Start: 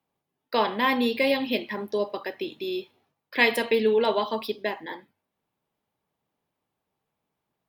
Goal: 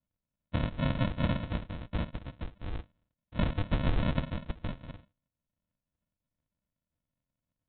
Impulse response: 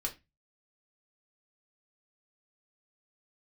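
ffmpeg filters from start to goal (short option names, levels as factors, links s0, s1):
-af "afftfilt=real='hypot(re,im)*cos(2*PI*random(0))':imag='hypot(re,im)*sin(2*PI*random(1))':win_size=512:overlap=0.75,aresample=8000,acrusher=samples=20:mix=1:aa=0.000001,aresample=44100"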